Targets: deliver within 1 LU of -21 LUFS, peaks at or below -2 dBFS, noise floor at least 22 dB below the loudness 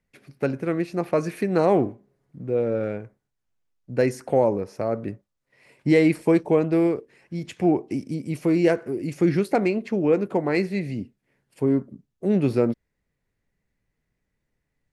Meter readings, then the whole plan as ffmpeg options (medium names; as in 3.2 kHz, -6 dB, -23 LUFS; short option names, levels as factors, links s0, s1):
loudness -23.5 LUFS; peak level -6.5 dBFS; loudness target -21.0 LUFS
-> -af "volume=1.33"